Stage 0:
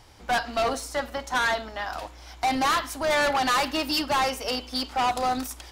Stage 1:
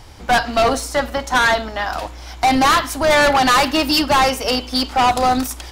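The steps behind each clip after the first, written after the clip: low shelf 190 Hz +6 dB; de-hum 57.91 Hz, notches 2; gain +9 dB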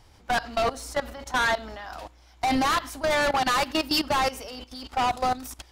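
level quantiser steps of 16 dB; gain -6.5 dB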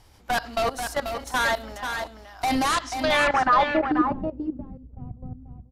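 low-pass sweep 13000 Hz -> 140 Hz, 2.6–4.36; echo 0.487 s -7 dB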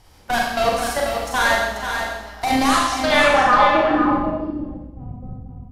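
Schroeder reverb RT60 0.95 s, combs from 30 ms, DRR -2 dB; gain +2 dB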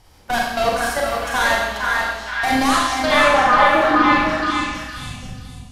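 delay with a stepping band-pass 0.462 s, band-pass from 1400 Hz, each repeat 0.7 oct, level -1 dB

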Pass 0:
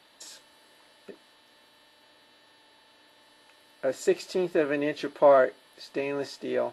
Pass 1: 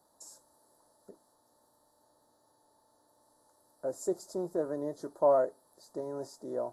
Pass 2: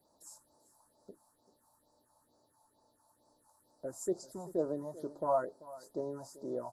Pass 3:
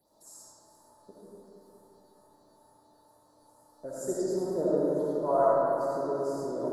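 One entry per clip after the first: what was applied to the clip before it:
Chebyshev band-stop 840–7300 Hz, order 2; bell 360 Hz -5.5 dB 2.3 oct; gain -2 dB
phaser stages 4, 2.2 Hz, lowest notch 360–2700 Hz; echo 0.388 s -18.5 dB
digital reverb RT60 3.4 s, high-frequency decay 0.55×, pre-delay 30 ms, DRR -8 dB

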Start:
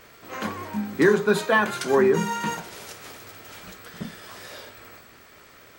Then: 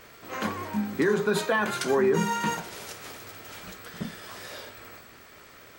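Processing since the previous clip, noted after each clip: limiter -15 dBFS, peak gain reduction 9 dB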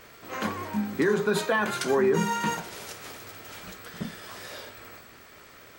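nothing audible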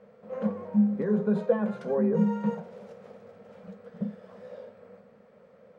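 double band-pass 320 Hz, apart 1.3 oct; gain +8 dB

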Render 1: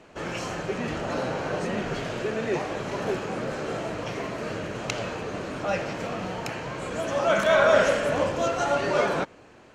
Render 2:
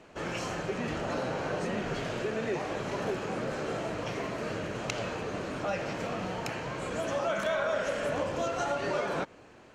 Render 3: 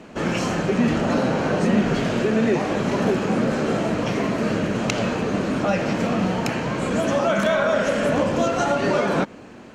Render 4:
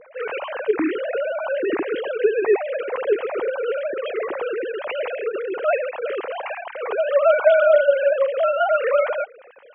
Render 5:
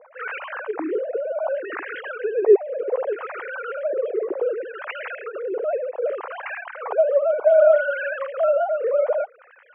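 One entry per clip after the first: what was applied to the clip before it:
compressor 5:1, threshold -25 dBFS, peak gain reduction 10.5 dB; gain -2.5 dB
bell 220 Hz +10 dB 0.85 oct; gain +9 dB
sine-wave speech
LFO band-pass sine 0.65 Hz 360–1700 Hz; gain +4.5 dB

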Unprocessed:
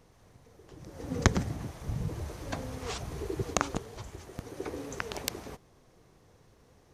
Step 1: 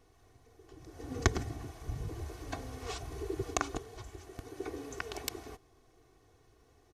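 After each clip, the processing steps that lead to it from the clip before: comb 2.7 ms, depth 69%; gain -5.5 dB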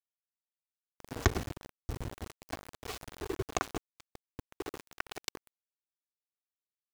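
high shelf 8900 Hz -10.5 dB; sample gate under -36 dBFS; gain +1 dB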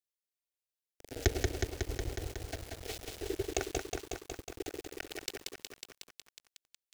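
fixed phaser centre 440 Hz, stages 4; lo-fi delay 0.183 s, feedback 80%, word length 9-bit, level -3.5 dB; gain +1 dB

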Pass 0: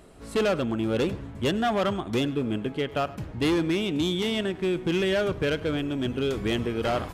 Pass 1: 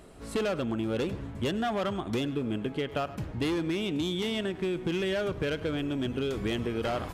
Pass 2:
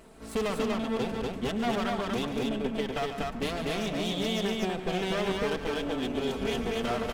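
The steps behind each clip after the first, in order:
compressor, threshold -27 dBFS, peak gain reduction 6 dB
minimum comb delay 4.5 ms; loudspeakers at several distances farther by 49 m -10 dB, 83 m -2 dB

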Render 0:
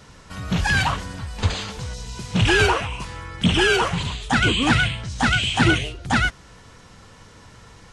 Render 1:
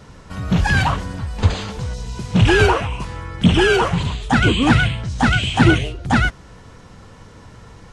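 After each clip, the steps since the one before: tilt shelf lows +4 dB, about 1300 Hz; gain +2 dB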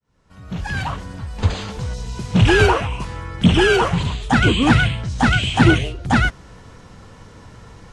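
opening faded in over 1.91 s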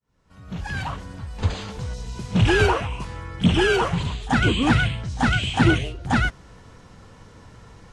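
pre-echo 36 ms -19.5 dB; gain -4.5 dB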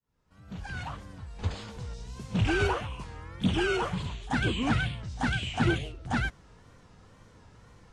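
wow and flutter 110 cents; gain -8.5 dB

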